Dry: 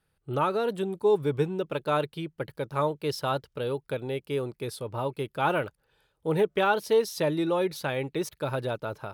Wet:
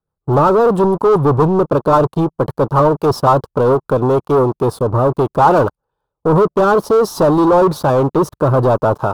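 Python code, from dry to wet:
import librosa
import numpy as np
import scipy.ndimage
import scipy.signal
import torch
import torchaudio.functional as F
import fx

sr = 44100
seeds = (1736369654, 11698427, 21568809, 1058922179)

y = fx.rotary_switch(x, sr, hz=7.5, then_hz=0.6, switch_at_s=3.6)
y = fx.leveller(y, sr, passes=5)
y = fx.high_shelf_res(y, sr, hz=1500.0, db=-11.5, q=3.0)
y = y * librosa.db_to_amplitude(5.5)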